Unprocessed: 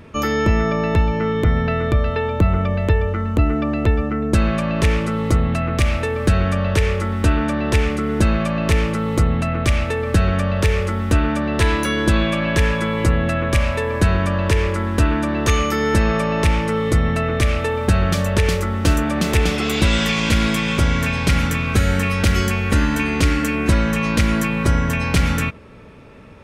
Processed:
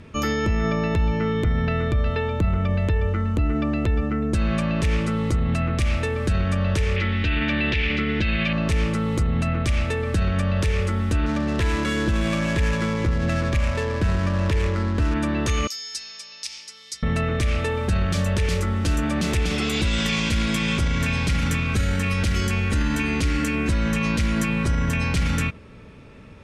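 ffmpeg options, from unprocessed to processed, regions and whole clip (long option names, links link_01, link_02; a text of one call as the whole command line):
ffmpeg -i in.wav -filter_complex "[0:a]asettb=1/sr,asplit=3[link_01][link_02][link_03];[link_01]atrim=end=6.964[link_04];[link_02]atrim=start=6.96:end=8.53,asetpts=PTS-STARTPTS,afade=type=in:duration=0.004:curve=qsin,afade=type=out:start_time=1.566:duration=0.004:curve=qsin,lowpass=frequency=3800:width=0.5412,lowpass=frequency=3800:width=1.3066,highshelf=frequency=1600:width_type=q:width=1.5:gain=10[link_05];[link_03]atrim=start=8.526[link_06];[link_04][link_05]acrossfade=duration=0.004:curve1=hsin:curve2=qsin[link_07];[link_07][link_06]acrossfade=duration=0.004:curve1=qsin:curve2=hsin,asettb=1/sr,asplit=3[link_08][link_09][link_10];[link_08]atrim=end=11.264[link_11];[link_09]atrim=start=11.26:end=15.14,asetpts=PTS-STARTPTS,afade=type=in:duration=0.004:curve=qsin,afade=type=out:start_time=3.876:duration=0.004:curve=qsin,lowpass=4900,adynamicsmooth=sensitivity=3:basefreq=560[link_12];[link_10]atrim=start=15.136[link_13];[link_11][link_12]acrossfade=duration=0.004:curve1=hsin:curve2=qsin[link_14];[link_14][link_13]acrossfade=duration=0.004:curve1=qsin:curve2=hsin,asettb=1/sr,asplit=3[link_15][link_16][link_17];[link_15]atrim=end=15.674[link_18];[link_16]atrim=start=15.67:end=17.03,asetpts=PTS-STARTPTS,afade=type=in:duration=0.004:curve=qsin,afade=type=out:start_time=1.356:duration=0.004:curve=qsin,bandpass=frequency=5100:width_type=q:width=4,aemphasis=mode=production:type=75fm[link_19];[link_17]atrim=start=17.026[link_20];[link_18][link_19]acrossfade=duration=0.004:curve1=hsin:curve2=qsin[link_21];[link_21][link_20]acrossfade=duration=0.004:curve1=qsin:curve2=hsin,lowpass=10000,equalizer=frequency=760:width=0.45:gain=-5.5,alimiter=limit=-14dB:level=0:latency=1:release=21" out.wav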